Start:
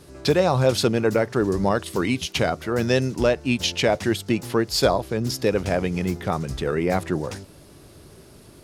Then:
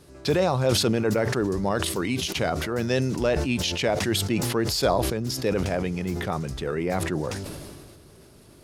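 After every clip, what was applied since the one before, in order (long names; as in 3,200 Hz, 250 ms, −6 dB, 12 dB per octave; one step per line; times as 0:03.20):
level that may fall only so fast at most 29 dB per second
level −4.5 dB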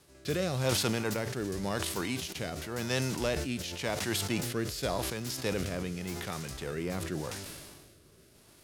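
spectral envelope flattened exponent 0.6
rotating-speaker cabinet horn 0.9 Hz
level −6.5 dB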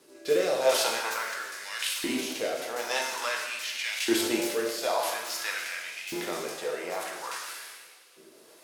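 auto-filter high-pass saw up 0.49 Hz 300–2,900 Hz
coupled-rooms reverb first 0.92 s, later 3.1 s, from −18 dB, DRR −1.5 dB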